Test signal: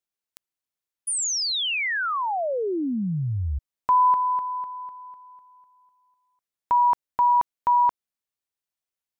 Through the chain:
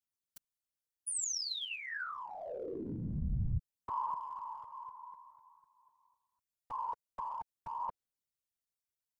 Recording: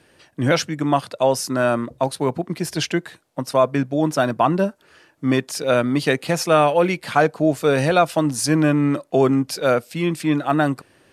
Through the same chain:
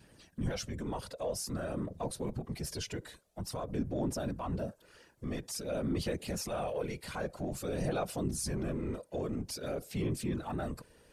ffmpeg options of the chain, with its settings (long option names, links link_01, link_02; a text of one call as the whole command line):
ffmpeg -i in.wav -af "afftfilt=real='hypot(re,im)*cos(2*PI*random(0))':imag='hypot(re,im)*sin(2*PI*random(1))':win_size=512:overlap=0.75,adynamicequalizer=threshold=0.0158:dfrequency=520:dqfactor=1.4:tfrequency=520:tqfactor=1.4:attack=5:release=100:ratio=0.417:range=3:mode=boostabove:tftype=bell,acompressor=threshold=-40dB:ratio=2:attack=0.22:release=54:knee=6:detection=peak,aphaser=in_gain=1:out_gain=1:delay=2.1:decay=0.33:speed=0.5:type=sinusoidal,bass=frequency=250:gain=9,treble=frequency=4000:gain=7,volume=-5dB" out.wav